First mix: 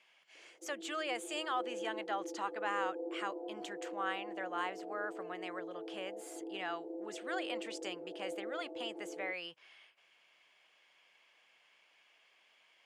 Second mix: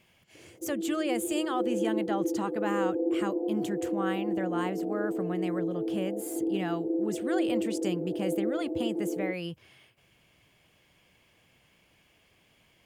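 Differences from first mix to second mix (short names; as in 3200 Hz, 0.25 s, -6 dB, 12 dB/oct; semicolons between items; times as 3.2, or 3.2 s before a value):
speech: remove air absorption 84 m; master: remove HPF 830 Hz 12 dB/oct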